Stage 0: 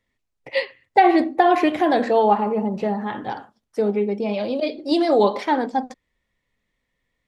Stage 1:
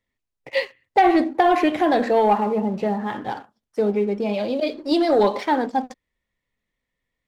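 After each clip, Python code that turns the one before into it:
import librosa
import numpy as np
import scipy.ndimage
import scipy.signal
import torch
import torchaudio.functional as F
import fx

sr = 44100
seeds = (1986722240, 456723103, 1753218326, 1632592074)

y = fx.leveller(x, sr, passes=1)
y = F.gain(torch.from_numpy(y), -3.5).numpy()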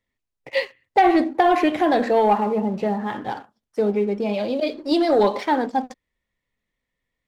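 y = x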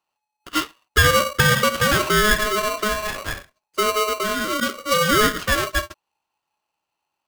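y = x * np.sign(np.sin(2.0 * np.pi * 850.0 * np.arange(len(x)) / sr))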